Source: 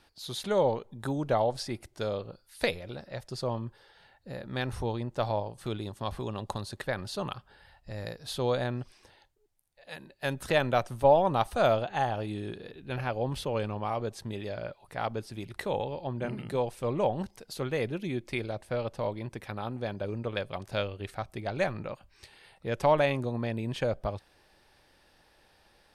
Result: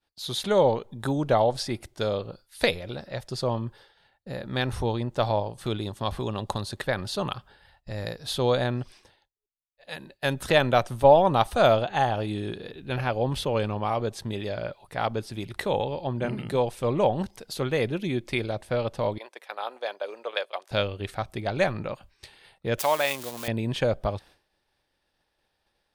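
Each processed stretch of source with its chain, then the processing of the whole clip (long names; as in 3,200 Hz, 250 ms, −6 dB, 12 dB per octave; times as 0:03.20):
0:19.18–0:20.71: noise gate −39 dBFS, range −7 dB + high-pass filter 500 Hz 24 dB per octave
0:22.78–0:23.48: spike at every zero crossing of −28 dBFS + high-pass filter 1,100 Hz 6 dB per octave + upward compression, threshold −37 dBFS
whole clip: downward expander −51 dBFS; parametric band 3,500 Hz +3 dB 0.38 octaves; level +5 dB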